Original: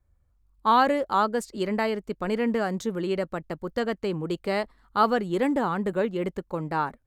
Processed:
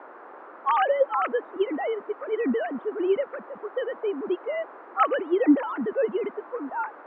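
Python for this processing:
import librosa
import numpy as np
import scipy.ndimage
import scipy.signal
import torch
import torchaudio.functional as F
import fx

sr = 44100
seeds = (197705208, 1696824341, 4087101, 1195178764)

y = fx.sine_speech(x, sr)
y = fx.env_lowpass(y, sr, base_hz=510.0, full_db=-18.0)
y = fx.dmg_noise_band(y, sr, seeds[0], low_hz=300.0, high_hz=1400.0, level_db=-45.0)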